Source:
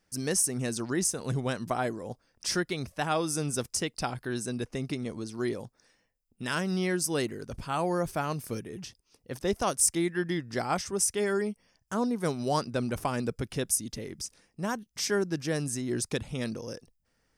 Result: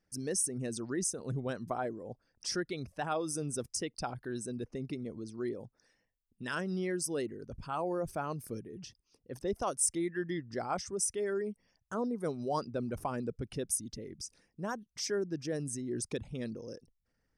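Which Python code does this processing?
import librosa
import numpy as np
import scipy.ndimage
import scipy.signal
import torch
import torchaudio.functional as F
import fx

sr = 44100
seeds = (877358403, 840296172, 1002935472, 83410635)

y = fx.envelope_sharpen(x, sr, power=1.5)
y = y * librosa.db_to_amplitude(-5.5)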